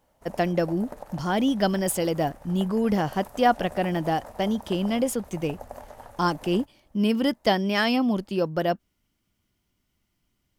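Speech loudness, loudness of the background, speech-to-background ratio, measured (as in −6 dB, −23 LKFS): −25.5 LKFS, −44.0 LKFS, 18.5 dB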